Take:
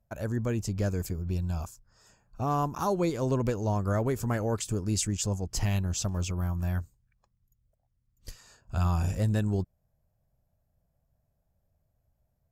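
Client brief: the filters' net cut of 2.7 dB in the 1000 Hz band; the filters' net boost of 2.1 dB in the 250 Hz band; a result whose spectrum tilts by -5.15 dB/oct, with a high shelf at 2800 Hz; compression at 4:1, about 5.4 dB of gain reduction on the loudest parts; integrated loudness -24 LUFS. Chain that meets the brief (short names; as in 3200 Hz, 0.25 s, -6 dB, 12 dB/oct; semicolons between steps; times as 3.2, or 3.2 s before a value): bell 250 Hz +3 dB; bell 1000 Hz -4.5 dB; high shelf 2800 Hz +6 dB; compressor 4:1, threshold -28 dBFS; gain +9 dB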